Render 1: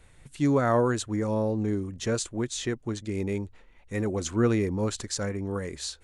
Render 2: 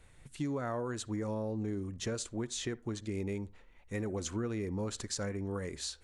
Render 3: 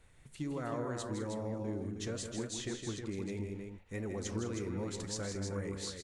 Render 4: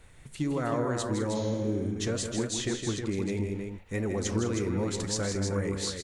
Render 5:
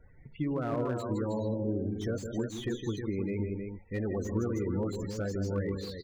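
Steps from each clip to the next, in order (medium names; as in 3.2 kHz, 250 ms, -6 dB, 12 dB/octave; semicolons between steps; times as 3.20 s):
compression 10:1, threshold -28 dBFS, peak gain reduction 10.5 dB; on a send at -20.5 dB: reverberation RT60 0.30 s, pre-delay 54 ms; on the sum: trim -4 dB
flange 1.7 Hz, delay 7.4 ms, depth 9.4 ms, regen -76%; on a send: multi-tap echo 162/202/315 ms -7.5/-14.5/-6 dB; on the sum: trim +1 dB
spectral replace 1.38–1.92 s, 630–7000 Hz both; trim +8.5 dB
level-controlled noise filter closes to 2.3 kHz, open at -25 dBFS; loudest bins only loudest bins 32; slew-rate limiter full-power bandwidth 34 Hz; trim -2 dB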